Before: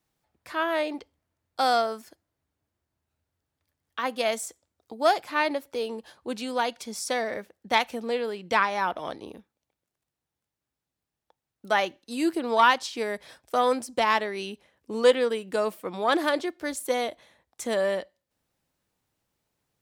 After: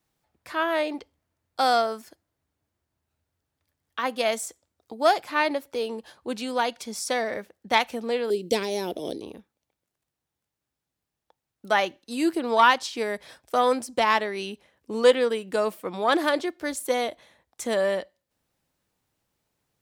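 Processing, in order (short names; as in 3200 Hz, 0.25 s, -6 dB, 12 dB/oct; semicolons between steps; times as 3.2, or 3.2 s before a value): 8.3–9.22 EQ curve 140 Hz 0 dB, 410 Hz +10 dB, 1200 Hz -21 dB, 3700 Hz +3 dB, 11000 Hz +12 dB; gain +1.5 dB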